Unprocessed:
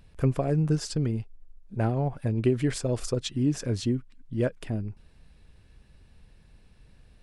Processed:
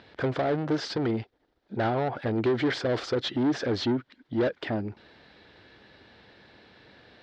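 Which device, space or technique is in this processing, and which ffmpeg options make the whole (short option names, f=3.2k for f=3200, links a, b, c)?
overdrive pedal into a guitar cabinet: -filter_complex "[0:a]asplit=2[a][b];[b]highpass=f=720:p=1,volume=29dB,asoftclip=type=tanh:threshold=-11.5dB[c];[a][c]amix=inputs=2:normalize=0,lowpass=f=7.5k:p=1,volume=-6dB,highpass=98,equalizer=f=160:t=q:w=4:g=-8,equalizer=f=330:t=q:w=4:g=4,equalizer=f=1.1k:t=q:w=4:g=-5,equalizer=f=2.6k:t=q:w=4:g=-9,lowpass=f=4.1k:w=0.5412,lowpass=f=4.1k:w=1.3066,volume=-6dB"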